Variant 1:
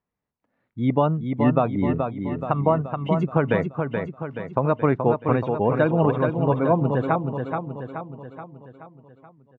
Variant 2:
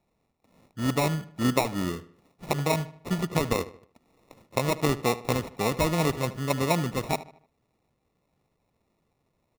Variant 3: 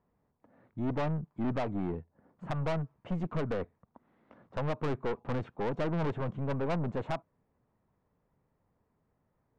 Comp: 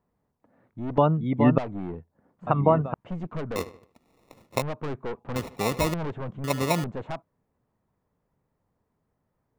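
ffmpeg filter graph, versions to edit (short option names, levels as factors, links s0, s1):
-filter_complex "[0:a]asplit=2[s0][s1];[1:a]asplit=3[s2][s3][s4];[2:a]asplit=6[s5][s6][s7][s8][s9][s10];[s5]atrim=end=0.982[s11];[s0]atrim=start=0.978:end=1.582[s12];[s6]atrim=start=1.578:end=2.472[s13];[s1]atrim=start=2.468:end=2.942[s14];[s7]atrim=start=2.938:end=3.562[s15];[s2]atrim=start=3.558:end=4.622[s16];[s8]atrim=start=4.618:end=5.362[s17];[s3]atrim=start=5.358:end=5.942[s18];[s9]atrim=start=5.938:end=6.442[s19];[s4]atrim=start=6.438:end=6.842[s20];[s10]atrim=start=6.838[s21];[s11][s12]acrossfade=d=0.004:c1=hsin:c2=hsin[s22];[s22][s13]acrossfade=d=0.004:c1=hsin:c2=hsin[s23];[s23][s14]acrossfade=d=0.004:c1=hsin:c2=hsin[s24];[s24][s15]acrossfade=d=0.004:c1=hsin:c2=hsin[s25];[s25][s16]acrossfade=d=0.004:c1=hsin:c2=hsin[s26];[s26][s17]acrossfade=d=0.004:c1=hsin:c2=hsin[s27];[s27][s18]acrossfade=d=0.004:c1=hsin:c2=hsin[s28];[s28][s19]acrossfade=d=0.004:c1=hsin:c2=hsin[s29];[s29][s20]acrossfade=d=0.004:c1=hsin:c2=hsin[s30];[s30][s21]acrossfade=d=0.004:c1=hsin:c2=hsin"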